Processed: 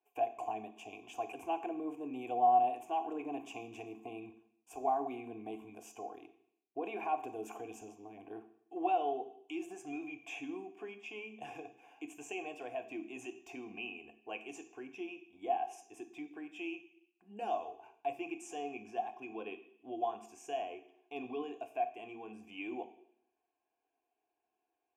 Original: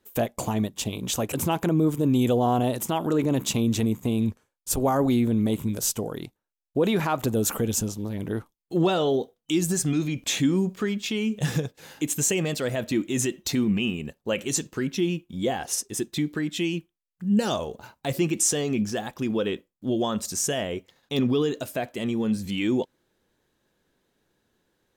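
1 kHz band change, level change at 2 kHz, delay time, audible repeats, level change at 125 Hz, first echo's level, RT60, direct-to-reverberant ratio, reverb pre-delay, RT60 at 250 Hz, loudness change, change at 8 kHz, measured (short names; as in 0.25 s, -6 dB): -2.5 dB, -12.5 dB, none, none, -35.5 dB, none, 0.70 s, 9.0 dB, 3 ms, 0.75 s, -14.0 dB, -29.5 dB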